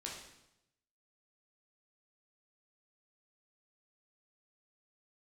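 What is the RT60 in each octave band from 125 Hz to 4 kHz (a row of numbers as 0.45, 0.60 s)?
1.1, 0.95, 0.85, 0.85, 0.80, 0.80 s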